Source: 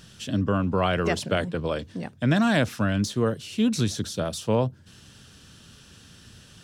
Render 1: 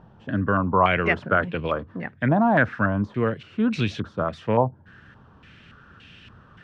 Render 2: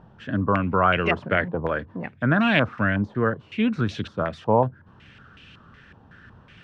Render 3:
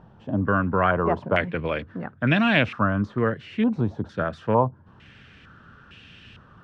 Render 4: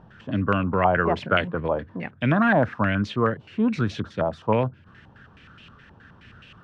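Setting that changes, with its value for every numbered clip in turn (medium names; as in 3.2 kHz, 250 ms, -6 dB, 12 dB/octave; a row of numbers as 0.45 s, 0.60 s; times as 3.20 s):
step-sequenced low-pass, rate: 3.5 Hz, 5.4 Hz, 2.2 Hz, 9.5 Hz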